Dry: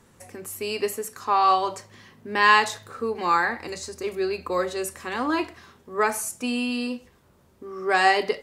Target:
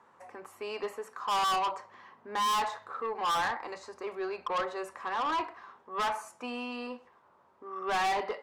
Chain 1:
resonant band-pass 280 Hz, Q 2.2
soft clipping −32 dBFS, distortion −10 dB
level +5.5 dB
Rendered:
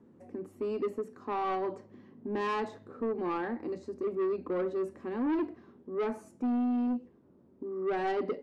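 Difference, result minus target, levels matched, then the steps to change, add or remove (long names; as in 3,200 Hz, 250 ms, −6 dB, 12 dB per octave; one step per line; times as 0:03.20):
250 Hz band +13.0 dB
change: resonant band-pass 990 Hz, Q 2.2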